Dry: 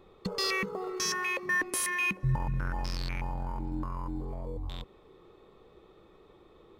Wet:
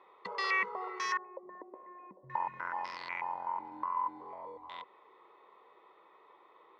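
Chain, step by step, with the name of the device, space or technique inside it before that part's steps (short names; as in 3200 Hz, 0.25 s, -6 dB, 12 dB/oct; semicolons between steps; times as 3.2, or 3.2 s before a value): tin-can telephone (BPF 680–2600 Hz; small resonant body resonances 990/2000 Hz, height 14 dB, ringing for 30 ms); 1.17–2.3 Chebyshev low-pass 610 Hz, order 3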